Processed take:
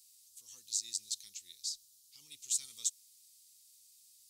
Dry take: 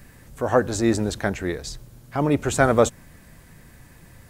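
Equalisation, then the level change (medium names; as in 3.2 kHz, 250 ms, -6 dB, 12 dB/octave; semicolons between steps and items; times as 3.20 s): inverse Chebyshev high-pass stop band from 1.7 kHz, stop band 50 dB; treble shelf 11 kHz -7.5 dB; 0.0 dB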